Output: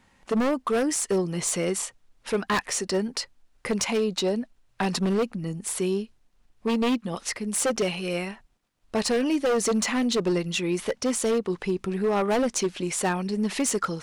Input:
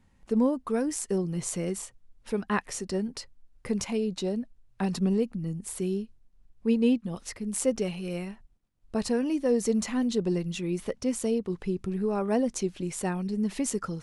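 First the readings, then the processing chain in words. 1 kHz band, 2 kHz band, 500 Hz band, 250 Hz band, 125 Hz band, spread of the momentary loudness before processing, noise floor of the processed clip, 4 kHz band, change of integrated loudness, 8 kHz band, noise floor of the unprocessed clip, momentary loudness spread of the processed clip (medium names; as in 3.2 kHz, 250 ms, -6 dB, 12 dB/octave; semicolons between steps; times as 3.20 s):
+7.5 dB, +8.5 dB, +4.0 dB, +1.0 dB, +0.5 dB, 9 LU, -65 dBFS, +10.0 dB, +3.0 dB, +7.0 dB, -62 dBFS, 8 LU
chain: overdrive pedal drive 16 dB, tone 6.7 kHz, clips at -12.5 dBFS; wavefolder -19 dBFS; trim +1 dB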